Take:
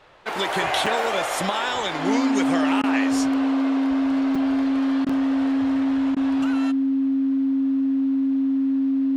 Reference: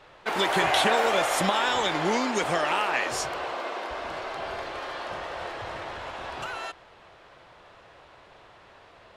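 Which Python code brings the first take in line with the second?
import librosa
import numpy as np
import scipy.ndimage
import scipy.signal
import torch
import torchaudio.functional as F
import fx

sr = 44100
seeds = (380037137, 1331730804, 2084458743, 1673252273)

y = fx.fix_declip(x, sr, threshold_db=-10.5)
y = fx.notch(y, sr, hz=270.0, q=30.0)
y = fx.fix_interpolate(y, sr, at_s=(0.86, 4.35, 5.09), length_ms=4.6)
y = fx.fix_interpolate(y, sr, at_s=(2.82, 5.05, 6.15), length_ms=14.0)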